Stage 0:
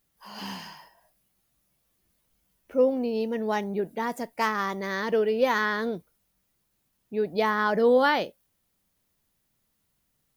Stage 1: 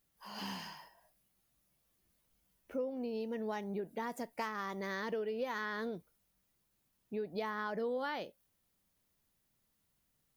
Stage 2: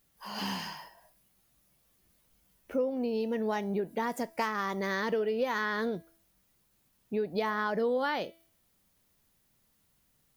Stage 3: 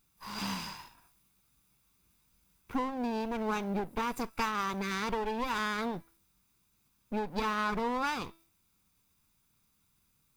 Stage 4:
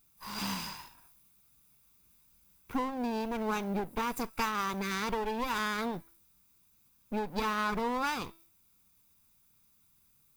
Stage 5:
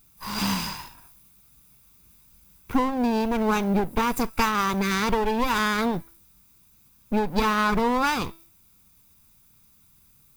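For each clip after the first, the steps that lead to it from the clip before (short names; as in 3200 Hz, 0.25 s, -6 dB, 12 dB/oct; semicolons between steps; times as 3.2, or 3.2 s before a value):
compressor 4:1, threshold -32 dBFS, peak gain reduction 13.5 dB; gain -4.5 dB
de-hum 330.5 Hz, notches 27; gain +7.5 dB
minimum comb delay 0.82 ms
high shelf 10000 Hz +9 dB
low shelf 190 Hz +5.5 dB; gain +8.5 dB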